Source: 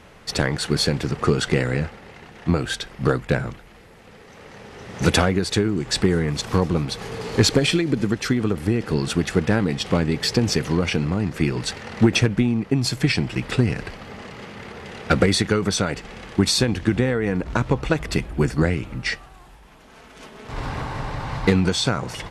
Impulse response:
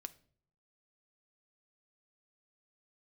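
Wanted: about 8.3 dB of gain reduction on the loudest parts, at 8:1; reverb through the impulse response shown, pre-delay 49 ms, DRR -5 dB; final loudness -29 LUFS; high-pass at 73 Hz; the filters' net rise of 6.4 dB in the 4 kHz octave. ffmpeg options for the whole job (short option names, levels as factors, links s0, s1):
-filter_complex "[0:a]highpass=73,equalizer=f=4000:t=o:g=7.5,acompressor=threshold=0.1:ratio=8,asplit=2[s0][s1];[1:a]atrim=start_sample=2205,adelay=49[s2];[s1][s2]afir=irnorm=-1:irlink=0,volume=2.99[s3];[s0][s3]amix=inputs=2:normalize=0,volume=0.335"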